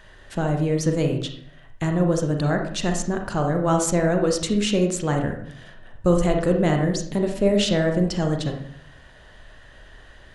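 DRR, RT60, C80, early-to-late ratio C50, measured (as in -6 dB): 3.0 dB, 0.60 s, 10.0 dB, 6.0 dB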